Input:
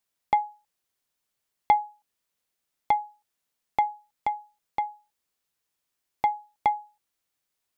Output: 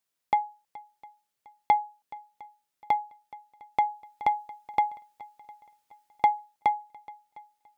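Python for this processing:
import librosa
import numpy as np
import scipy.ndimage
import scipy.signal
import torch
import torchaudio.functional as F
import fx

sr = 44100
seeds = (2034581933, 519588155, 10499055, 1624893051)

y = fx.low_shelf(x, sr, hz=67.0, db=-8.0)
y = fx.echo_swing(y, sr, ms=706, ratio=1.5, feedback_pct=34, wet_db=-20.5)
y = fx.rider(y, sr, range_db=4, speed_s=0.5)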